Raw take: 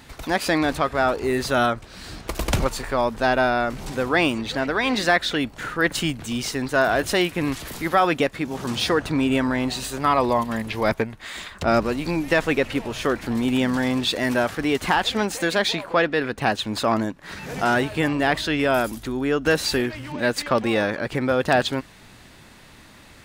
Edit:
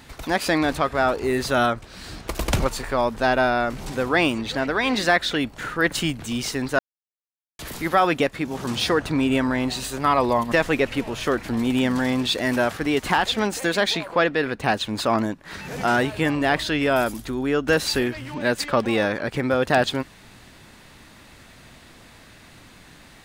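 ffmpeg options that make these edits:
-filter_complex "[0:a]asplit=4[a][b][c][d];[a]atrim=end=6.79,asetpts=PTS-STARTPTS,afade=t=out:st=6.786:d=0.004:c=hsin[e];[b]atrim=start=6.79:end=7.59,asetpts=PTS-STARTPTS,volume=0[f];[c]atrim=start=7.59:end=10.522,asetpts=PTS-STARTPTS,afade=t=in:d=0.004:c=hsin[g];[d]atrim=start=12.298[h];[e][f][g]concat=n=3:v=0:a=1[i];[i][h]acrossfade=d=0.004:c1=hsin:c2=hsin"

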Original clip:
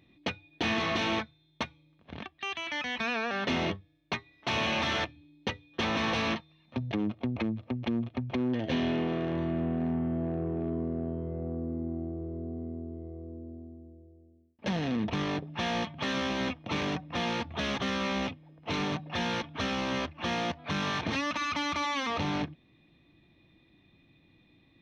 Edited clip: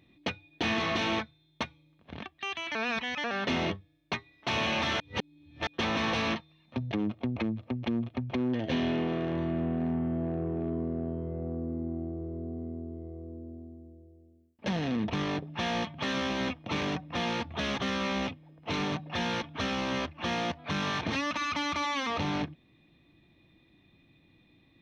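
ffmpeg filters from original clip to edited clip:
-filter_complex "[0:a]asplit=5[a][b][c][d][e];[a]atrim=end=2.752[f];[b]atrim=start=2.748:end=3.242,asetpts=PTS-STARTPTS,areverse[g];[c]atrim=start=3.238:end=5.002[h];[d]atrim=start=4.998:end=5.672,asetpts=PTS-STARTPTS,areverse[i];[e]atrim=start=5.668[j];[f][g]acrossfade=d=0.004:c1=hsin:c2=hsin[k];[k][h]acrossfade=d=0.004:c1=hsin:c2=hsin[l];[l][i]acrossfade=d=0.004:c1=hsin:c2=hsin[m];[m][j]acrossfade=d=0.004:c1=hsin:c2=hsin"

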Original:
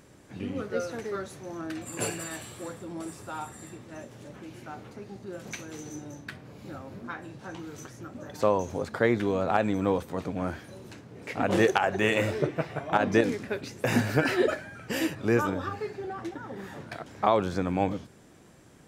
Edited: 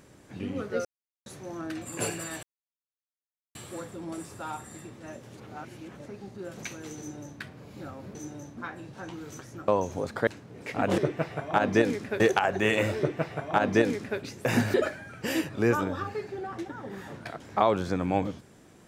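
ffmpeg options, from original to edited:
-filter_complex "[0:a]asplit=13[a][b][c][d][e][f][g][h][i][j][k][l][m];[a]atrim=end=0.85,asetpts=PTS-STARTPTS,afade=t=out:st=0.846:d=0.004:c=hsin[n];[b]atrim=start=0.85:end=1.26,asetpts=PTS-STARTPTS,volume=0[o];[c]atrim=start=1.26:end=2.43,asetpts=PTS-STARTPTS,afade=t=in:d=0.004:c=hsin,afade=t=out:st=1.166:d=0.004:c=hsin,apad=pad_dur=1.12[p];[d]atrim=start=2.43:end=4.252,asetpts=PTS-STARTPTS,afade=t=in:d=0.004:c=hsin[q];[e]atrim=start=4.248:end=4.942,asetpts=PTS-STARTPTS,areverse[r];[f]atrim=start=4.938:end=7.032[s];[g]atrim=start=5.858:end=6.282[t];[h]atrim=start=7.028:end=8.142[u];[i]atrim=start=8.458:end=9.052[v];[j]atrim=start=10.878:end=11.592[w];[k]atrim=start=12.368:end=13.592[x];[l]atrim=start=11.588:end=14.132[y];[m]atrim=start=14.398[z];[n][o][p][q]concat=n=4:v=0:a=1[aa];[aa][r]acrossfade=d=0.004:c1=hsin:c2=hsin[ab];[ab][s]acrossfade=d=0.004:c1=hsin:c2=hsin[ac];[ac][t]acrossfade=d=0.004:c1=hsin:c2=hsin[ad];[ad][u]acrossfade=d=0.004:c1=hsin:c2=hsin[ae];[ae][v]acrossfade=d=0.004:c1=hsin:c2=hsin[af];[af][w]acrossfade=d=0.004:c1=hsin:c2=hsin[ag];[ag][x]acrossfade=d=0.004:c1=hsin:c2=hsin[ah];[ah][y]acrossfade=d=0.004:c1=hsin:c2=hsin[ai];[ai][z]acrossfade=d=0.004:c1=hsin:c2=hsin"

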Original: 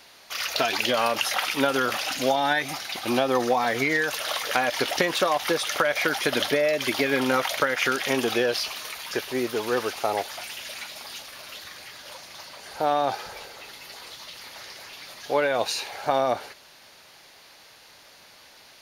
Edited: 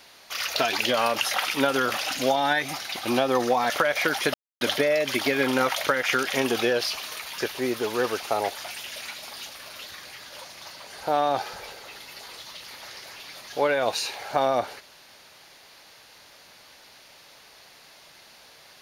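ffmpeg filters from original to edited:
-filter_complex "[0:a]asplit=3[a][b][c];[a]atrim=end=3.702[d];[b]atrim=start=5.698:end=6.34,asetpts=PTS-STARTPTS,afade=t=out:st=0.638:d=0.004:c=hsin,apad=pad_dur=0.27[e];[c]atrim=start=6.34,asetpts=PTS-STARTPTS,afade=t=in:d=0.004:c=hsin[f];[e][f]concat=n=2:v=0:a=1[g];[d][g]acrossfade=d=0.004:c1=hsin:c2=hsin"

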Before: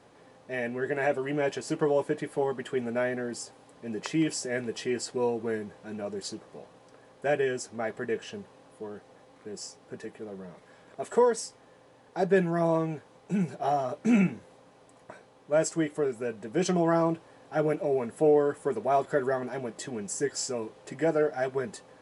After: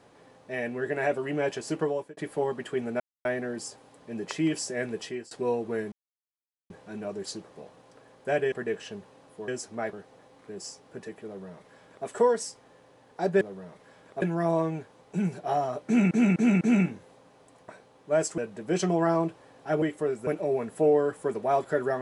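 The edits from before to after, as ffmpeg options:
-filter_complex "[0:a]asplit=16[a][b][c][d][e][f][g][h][i][j][k][l][m][n][o][p];[a]atrim=end=2.17,asetpts=PTS-STARTPTS,afade=t=out:st=1.78:d=0.39[q];[b]atrim=start=2.17:end=3,asetpts=PTS-STARTPTS,afade=t=in:d=0.004:c=hsin,afade=t=out:st=0.826:d=0.004:c=hsin,apad=pad_dur=0.25[r];[c]atrim=start=3:end=5.06,asetpts=PTS-STARTPTS,afade=t=in:d=0.004:c=hsin,afade=t=out:st=1.74:d=0.32:silence=0.0749894[s];[d]atrim=start=5.06:end=5.67,asetpts=PTS-STARTPTS,afade=t=in:d=0.004:c=hsin:silence=0.0749894,afade=t=out:st=0.606:d=0.004:c=hsin,apad=pad_dur=0.78[t];[e]atrim=start=5.67:end=7.492,asetpts=PTS-STARTPTS,afade=t=in:d=0.004:c=hsin[u];[f]atrim=start=7.938:end=8.902[v];[g]atrim=start=7.488:end=7.942[w];[h]atrim=start=8.898:end=12.382[x];[i]atrim=start=10.228:end=11.042[y];[j]atrim=start=12.378:end=14.272[z];[k]atrim=start=14.018:end=14.272[aa];[l]atrim=start=14.018:end=14.272[ab];[m]atrim=start=14.018:end=15.792[ac];[n]atrim=start=16.238:end=17.682[ad];[o]atrim=start=15.788:end=16.242[ae];[p]atrim=start=17.678[af];[q][r][s][t][u]concat=n=5:v=0:a=1[ag];[ag][v]acrossfade=d=0.004:c1=hsin:c2=hsin[ah];[ah][w]acrossfade=d=0.004:c1=hsin:c2=hsin[ai];[ai][x]acrossfade=d=0.004:c1=hsin:c2=hsin[aj];[aj][y]acrossfade=d=0.004:c1=hsin:c2=hsin[ak];[ak][z]acrossfade=d=0.004:c1=hsin:c2=hsin[al];[al][aa]acrossfade=d=0.004:c1=hsin:c2=hsin[am];[am][ab]acrossfade=d=0.004:c1=hsin:c2=hsin[an];[an][ac]acrossfade=d=0.004:c1=hsin:c2=hsin[ao];[ao][ad]acrossfade=d=0.004:c1=hsin:c2=hsin[ap];[ap][ae]acrossfade=d=0.004:c1=hsin:c2=hsin[aq];[aq][af]acrossfade=d=0.004:c1=hsin:c2=hsin"

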